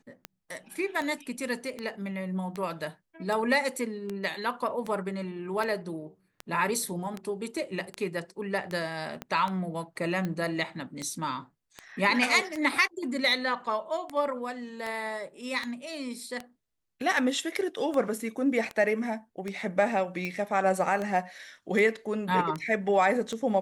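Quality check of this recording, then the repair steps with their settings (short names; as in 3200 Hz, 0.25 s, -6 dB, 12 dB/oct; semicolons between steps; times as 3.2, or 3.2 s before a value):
tick 78 rpm -20 dBFS
9.22 pop -20 dBFS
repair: de-click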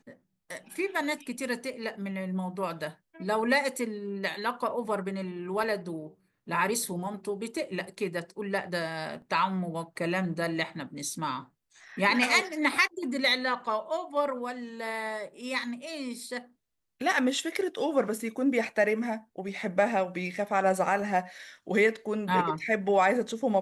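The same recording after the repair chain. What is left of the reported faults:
9.22 pop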